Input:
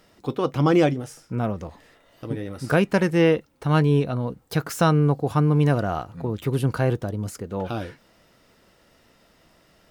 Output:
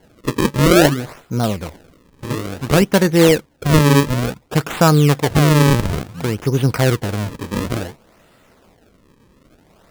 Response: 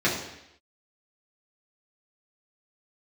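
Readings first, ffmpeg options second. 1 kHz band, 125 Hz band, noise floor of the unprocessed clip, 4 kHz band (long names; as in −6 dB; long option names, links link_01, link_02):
+6.0 dB, +6.5 dB, −59 dBFS, +13.0 dB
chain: -af "acrusher=samples=35:mix=1:aa=0.000001:lfo=1:lforange=56:lforate=0.57,volume=6.5dB"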